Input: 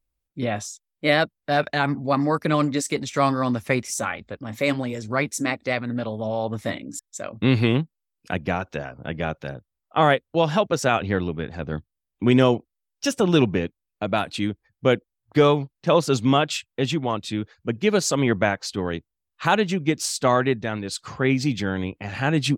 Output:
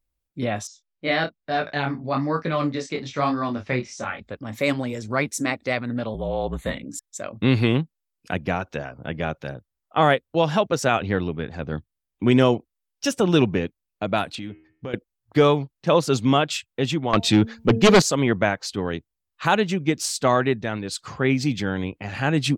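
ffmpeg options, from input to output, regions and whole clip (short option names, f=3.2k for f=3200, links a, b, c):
-filter_complex "[0:a]asettb=1/sr,asplit=3[a][b][c];[a]atrim=end=0.674[d];[b]atrim=start=0.67:end=4.2,asetpts=PTS-STARTPTS,afade=t=in:d=0.004:c=qsin,afade=t=out:st=3.526:d=0.004:c=qsin,lowpass=f=5.5k:w=0.5412,lowpass=f=5.5k:w=1.3066,flanger=delay=18:depth=6.7:speed=1.1,asplit=2[e][f];[f]adelay=30,volume=-11dB[g];[e][g]amix=inputs=2:normalize=0,atrim=end_sample=155673[h];[c]atrim=start=4.196[i];[d][h]acrossfade=d=0.004:c1=hsin:c2=qsin[j];[j][i]acrossfade=d=0.004:c1=qsin:c2=hsin,asettb=1/sr,asplit=3[k][l][m];[k]atrim=end=6.144[n];[l]atrim=start=6.14:end=6.84,asetpts=PTS-STARTPTS,afade=t=in:d=0.004:c=qsin,afade=t=out:st=0.696:d=0.004:c=qsin,asuperstop=centerf=5300:order=12:qfactor=3.4,afreqshift=-45[o];[m]atrim=start=6.836[p];[n][o]acrossfade=d=0.004:c1=hsin:c2=qsin[q];[q][p]acrossfade=d=0.004:c1=qsin:c2=hsin,asettb=1/sr,asplit=3[r][s][t];[r]atrim=end=14.354[u];[s]atrim=start=14.35:end=14.94,asetpts=PTS-STARTPTS,afade=t=in:d=0.004:c=qsin,afade=t=out:st=0.586:d=0.004:c=qsin,lowpass=5.5k,acompressor=threshold=-30dB:ratio=4:attack=3.2:release=140:knee=1:detection=peak,bandreject=f=78.83:t=h:w=4,bandreject=f=157.66:t=h:w=4,bandreject=f=236.49:t=h:w=4,bandreject=f=315.32:t=h:w=4,bandreject=f=394.15:t=h:w=4,bandreject=f=472.98:t=h:w=4,bandreject=f=551.81:t=h:w=4,bandreject=f=630.64:t=h:w=4,bandreject=f=709.47:t=h:w=4,bandreject=f=788.3:t=h:w=4,bandreject=f=867.13:t=h:w=4,bandreject=f=945.96:t=h:w=4,bandreject=f=1.02479k:t=h:w=4,bandreject=f=1.10362k:t=h:w=4,bandreject=f=1.18245k:t=h:w=4,bandreject=f=1.26128k:t=h:w=4,bandreject=f=1.34011k:t=h:w=4,bandreject=f=1.41894k:t=h:w=4,bandreject=f=1.49777k:t=h:w=4,bandreject=f=1.5766k:t=h:w=4,bandreject=f=1.65543k:t=h:w=4,bandreject=f=1.73426k:t=h:w=4,bandreject=f=1.81309k:t=h:w=4,bandreject=f=1.89192k:t=h:w=4,bandreject=f=1.97075k:t=h:w=4,bandreject=f=2.04958k:t=h:w=4,bandreject=f=2.12841k:t=h:w=4,bandreject=f=2.20724k:t=h:w=4,bandreject=f=2.28607k:t=h:w=4,bandreject=f=2.3649k:t=h:w=4,bandreject=f=2.44373k:t=h:w=4,bandreject=f=2.52256k:t=h:w=4,bandreject=f=2.60139k:t=h:w=4,bandreject=f=2.68022k:t=h:w=4,bandreject=f=2.75905k:t=h:w=4,bandreject=f=2.83788k:t=h:w=4,bandreject=f=2.91671k:t=h:w=4,bandreject=f=2.99554k:t=h:w=4,bandreject=f=3.07437k:t=h:w=4[v];[t]atrim=start=14.936[w];[u][v]acrossfade=d=0.004:c1=hsin:c2=qsin[x];[x][w]acrossfade=d=0.004:c1=qsin:c2=hsin,asettb=1/sr,asplit=3[y][z][aa];[y]atrim=end=17.134[ab];[z]atrim=start=17.13:end=18.02,asetpts=PTS-STARTPTS,afade=t=in:d=0.004:c=qsin,afade=t=out:st=0.886:d=0.004:c=qsin,equalizer=f=10k:w=3.2:g=-7.5,bandreject=f=226.5:t=h:w=4,bandreject=f=453:t=h:w=4,bandreject=f=679.5:t=h:w=4,bandreject=f=906:t=h:w=4,aeval=exprs='0.376*sin(PI/2*2.51*val(0)/0.376)':c=same[ac];[aa]atrim=start=18.016[ad];[ab][ac]acrossfade=d=0.004:c1=hsin:c2=qsin[ae];[ae][ad]acrossfade=d=0.004:c1=qsin:c2=hsin"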